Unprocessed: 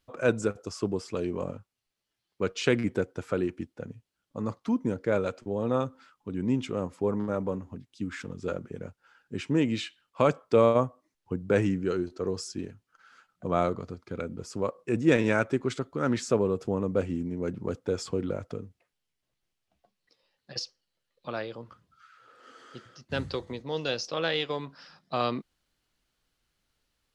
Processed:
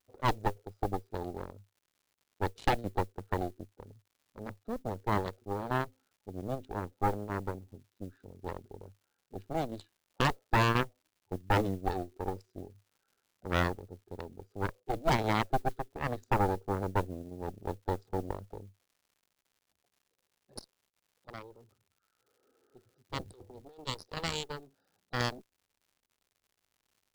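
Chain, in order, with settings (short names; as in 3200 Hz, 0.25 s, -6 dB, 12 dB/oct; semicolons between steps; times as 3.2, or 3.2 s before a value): Wiener smoothing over 41 samples; thirty-one-band EQ 100 Hz +10 dB, 160 Hz -9 dB, 400 Hz +10 dB, 800 Hz +11 dB, 1250 Hz +4 dB, 2500 Hz -8 dB, 4000 Hz +11 dB; 23.33–23.87 negative-ratio compressor -37 dBFS, ratio -1; crackle 170/s -44 dBFS; added harmonics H 3 -6 dB, 6 -6 dB, 8 -18 dB, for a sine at -5.5 dBFS; modulation noise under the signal 27 dB; gain -8.5 dB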